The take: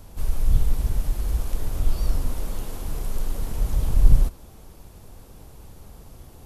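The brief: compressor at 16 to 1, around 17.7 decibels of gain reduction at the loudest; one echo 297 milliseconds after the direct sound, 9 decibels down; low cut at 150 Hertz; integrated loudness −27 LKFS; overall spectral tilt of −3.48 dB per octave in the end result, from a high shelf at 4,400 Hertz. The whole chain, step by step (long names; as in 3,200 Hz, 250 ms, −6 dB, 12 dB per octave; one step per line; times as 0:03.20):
high-pass filter 150 Hz
high-shelf EQ 4,400 Hz +3.5 dB
downward compressor 16 to 1, threshold −42 dBFS
single-tap delay 297 ms −9 dB
level +19 dB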